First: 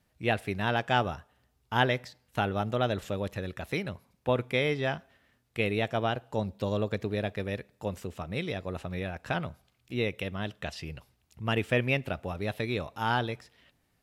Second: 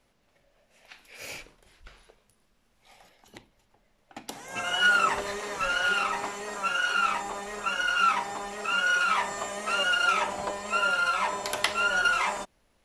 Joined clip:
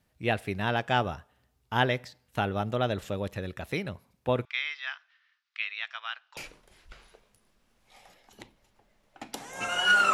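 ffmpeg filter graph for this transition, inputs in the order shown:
-filter_complex "[0:a]asettb=1/sr,asplit=3[s0][s1][s2];[s0]atrim=end=4.454[s3];[s1]atrim=start=4.45:end=6.37,asetpts=PTS-STARTPTS,afade=t=in:d=0.004:c=qsin,afade=t=out:st=1.916:d=0.004:c=qsin,asuperpass=centerf=2600:order=8:qfactor=0.59[s4];[s2]atrim=start=6.366[s5];[s3][s4]acrossfade=d=0.004:c1=hsin:c2=qsin[s6];[s6][s5]acrossfade=d=0.004:c1=qsin:c2=hsin,apad=whole_dur=10.13,atrim=end=10.13,atrim=end=6.372[s7];[1:a]atrim=start=1.318:end=5.08[s8];[s7][s8]acrossfade=d=0.004:c1=hsin:c2=hsin"

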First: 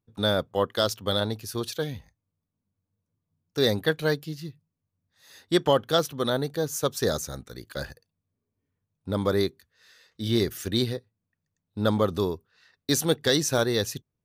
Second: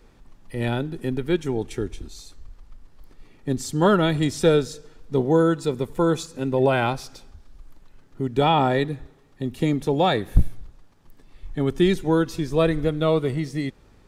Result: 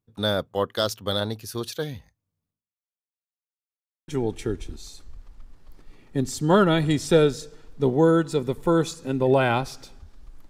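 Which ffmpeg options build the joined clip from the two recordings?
-filter_complex "[0:a]apad=whole_dur=10.49,atrim=end=10.49,asplit=2[s0][s1];[s0]atrim=end=3.17,asetpts=PTS-STARTPTS,afade=t=out:st=2.5:d=0.67:c=exp[s2];[s1]atrim=start=3.17:end=4.08,asetpts=PTS-STARTPTS,volume=0[s3];[1:a]atrim=start=1.4:end=7.81,asetpts=PTS-STARTPTS,afade=t=in:d=0.004:c=hsin[s4];[s2][s3][s4]concat=n=3:v=0:a=1"

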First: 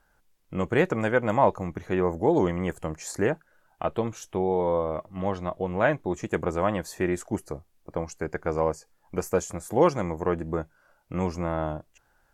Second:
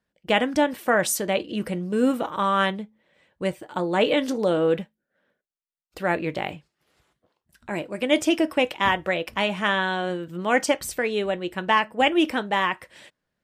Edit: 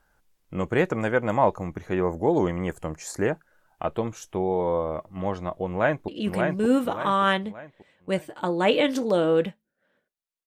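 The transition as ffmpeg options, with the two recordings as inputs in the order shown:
-filter_complex "[0:a]apad=whole_dur=10.46,atrim=end=10.46,atrim=end=6.082[s0];[1:a]atrim=start=1.408:end=5.79[s1];[s0][s1]acrossfade=d=0.004:c1=hsin:c2=hsin,asplit=2[s2][s3];[s3]afade=t=in:st=5.68:d=0.01,afade=t=out:st=6.08:d=0.01,aecho=0:1:580|1160|1740|2320|2900:0.668344|0.267338|0.106935|0.042774|0.0171096[s4];[s2][s4]amix=inputs=2:normalize=0"

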